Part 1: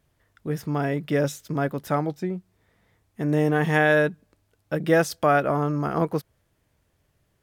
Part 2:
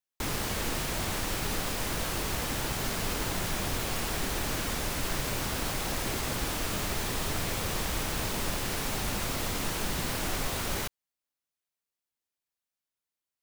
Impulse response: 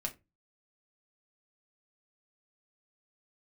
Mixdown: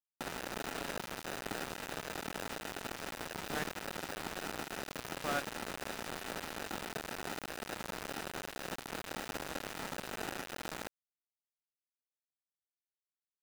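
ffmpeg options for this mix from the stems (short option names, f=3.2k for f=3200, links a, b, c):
-filter_complex "[0:a]highpass=f=1.3k:p=1,aeval=exprs='val(0)*pow(10,-35*if(lt(mod(-1.1*n/s,1),2*abs(-1.1)/1000),1-mod(-1.1*n/s,1)/(2*abs(-1.1)/1000),(mod(-1.1*n/s,1)-2*abs(-1.1)/1000)/(1-2*abs(-1.1)/1000))/20)':c=same,volume=-6dB[a];[1:a]highshelf=f=2.1k:g=-2.5,acrusher=samples=40:mix=1:aa=0.000001,volume=-3.5dB[b];[a][b]amix=inputs=2:normalize=0,highpass=f=150:w=0.5412,highpass=f=150:w=1.3066,aeval=exprs='val(0)*gte(abs(val(0)),0.0224)':c=same"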